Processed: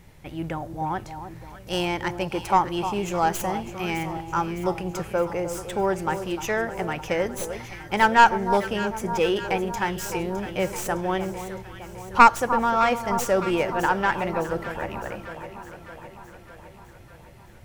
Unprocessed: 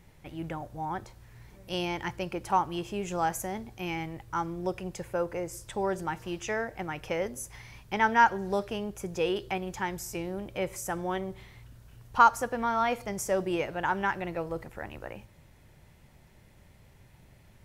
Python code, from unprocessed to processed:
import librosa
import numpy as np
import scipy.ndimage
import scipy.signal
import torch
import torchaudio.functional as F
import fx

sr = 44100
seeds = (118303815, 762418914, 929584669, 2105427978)

p1 = fx.tracing_dist(x, sr, depth_ms=0.078)
p2 = p1 + fx.echo_alternate(p1, sr, ms=305, hz=1200.0, feedback_pct=76, wet_db=-9.5, dry=0)
y = p2 * librosa.db_to_amplitude(6.0)